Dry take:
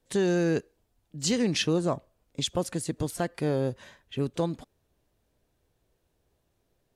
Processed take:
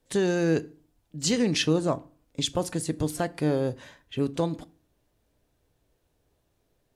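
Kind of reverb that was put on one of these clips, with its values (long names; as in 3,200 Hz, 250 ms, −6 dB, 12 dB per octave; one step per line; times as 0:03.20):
feedback delay network reverb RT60 0.39 s, low-frequency decay 1.3×, high-frequency decay 0.75×, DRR 14 dB
level +1.5 dB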